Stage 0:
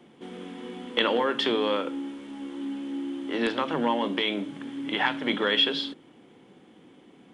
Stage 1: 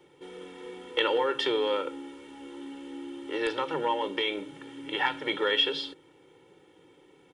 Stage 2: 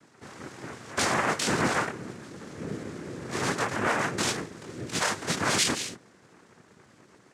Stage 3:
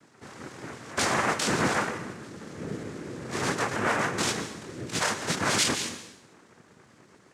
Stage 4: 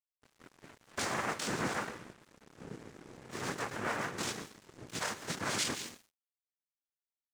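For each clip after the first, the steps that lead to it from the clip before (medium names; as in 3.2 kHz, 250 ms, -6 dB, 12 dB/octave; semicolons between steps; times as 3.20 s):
treble shelf 7.1 kHz +4.5 dB; comb 2.2 ms, depth 92%; trim -5.5 dB
chorus voices 2, 0.91 Hz, delay 23 ms, depth 2.7 ms; overload inside the chain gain 25.5 dB; noise-vocoded speech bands 3; trim +5 dB
plate-style reverb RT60 0.83 s, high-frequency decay 0.95×, pre-delay 110 ms, DRR 10.5 dB
crossover distortion -40 dBFS; trim -8 dB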